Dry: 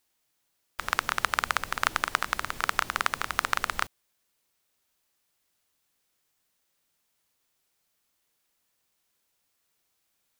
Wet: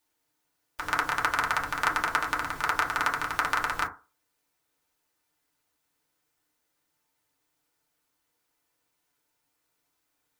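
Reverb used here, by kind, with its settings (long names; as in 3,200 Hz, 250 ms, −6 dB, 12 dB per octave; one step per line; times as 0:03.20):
feedback delay network reverb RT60 0.32 s, low-frequency decay 0.9×, high-frequency decay 0.3×, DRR −3.5 dB
level −4 dB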